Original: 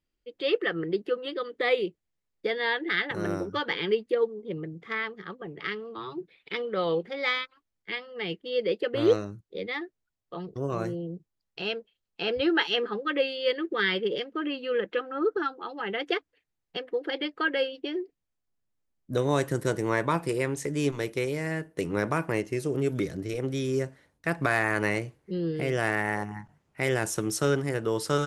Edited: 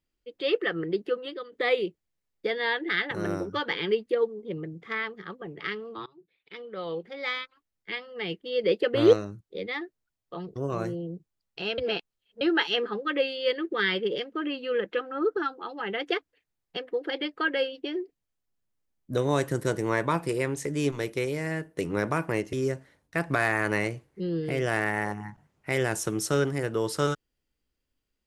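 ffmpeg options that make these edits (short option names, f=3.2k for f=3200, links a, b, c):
-filter_complex "[0:a]asplit=8[a][b][c][d][e][f][g][h];[a]atrim=end=1.52,asetpts=PTS-STARTPTS,afade=t=out:st=1.15:d=0.37:silence=0.298538[i];[b]atrim=start=1.52:end=6.06,asetpts=PTS-STARTPTS,afade=t=in:d=0.004:c=hsin:silence=0.298538,afade=t=out:st=4.536:d=0.004:c=hsin:silence=0.0668344[j];[c]atrim=start=6.06:end=8.642,asetpts=PTS-STARTPTS,afade=t=in:d=2:silence=0.0668344[k];[d]atrim=start=8.638:end=9.132,asetpts=PTS-STARTPTS,volume=3.5dB[l];[e]atrim=start=9.128:end=11.782[m];[f]atrim=start=11.778:end=12.412,asetpts=PTS-STARTPTS,areverse[n];[g]atrim=start=12.408:end=22.532[o];[h]atrim=start=23.638[p];[i][j][k]concat=n=3:v=0:a=1[q];[q][l]acrossfade=d=0.004:c1=hsin:c2=hsin[r];[r][m]acrossfade=d=0.004:c1=hsin:c2=hsin[s];[s][n]acrossfade=d=0.004:c1=hsin:c2=hsin[t];[t][o]acrossfade=d=0.004:c1=hsin:c2=hsin[u];[u][p]acrossfade=d=0.004:c1=hsin:c2=hsin"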